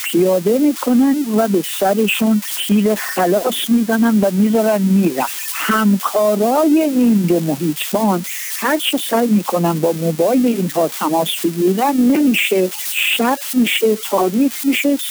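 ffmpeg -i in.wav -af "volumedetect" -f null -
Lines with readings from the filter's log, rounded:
mean_volume: -15.4 dB
max_volume: -4.9 dB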